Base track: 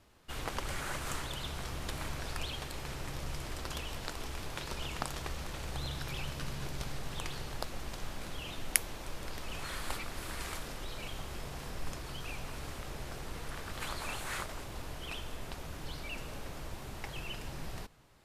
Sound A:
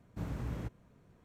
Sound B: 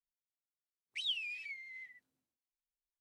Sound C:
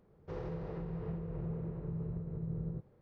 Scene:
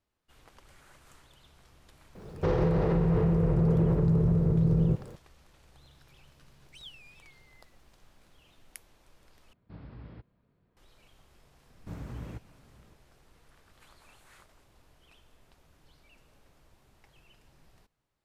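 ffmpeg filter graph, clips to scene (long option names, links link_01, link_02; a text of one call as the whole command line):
ffmpeg -i bed.wav -i cue0.wav -i cue1.wav -i cue2.wav -filter_complex "[1:a]asplit=2[link_01][link_02];[0:a]volume=-19.5dB[link_03];[3:a]alimiter=level_in=35.5dB:limit=-1dB:release=50:level=0:latency=1[link_04];[2:a]aemphasis=mode=production:type=75fm[link_05];[link_01]aresample=11025,aresample=44100[link_06];[link_02]aecho=1:1:578:0.0891[link_07];[link_03]asplit=2[link_08][link_09];[link_08]atrim=end=9.534[link_10];[link_06]atrim=end=1.24,asetpts=PTS-STARTPTS,volume=-8.5dB[link_11];[link_09]atrim=start=10.766[link_12];[link_04]atrim=end=3.01,asetpts=PTS-STARTPTS,volume=-16.5dB,afade=type=in:duration=0.004:curve=hsin,afade=type=out:start_time=3.006:duration=0.004:curve=hsin,adelay=2150[link_13];[link_05]atrim=end=3,asetpts=PTS-STARTPTS,volume=-16dB,afade=type=in:duration=0.004:curve=hsin,afade=type=out:start_time=2.996:duration=0.004:curve=hsin,adelay=254457S[link_14];[link_07]atrim=end=1.24,asetpts=PTS-STARTPTS,volume=-2dB,afade=type=in:duration=0.004:curve=hsin,afade=type=out:start_time=1.236:duration=0.004:curve=hsin,adelay=515970S[link_15];[link_10][link_11]acrossfade=duration=0.004:curve1=hsin:curve2=hsin[link_16];[link_16][link_12]acrossfade=duration=0.004:curve1=hsin:curve2=hsin[link_17];[link_17][link_13][link_14][link_15]amix=inputs=4:normalize=0" out.wav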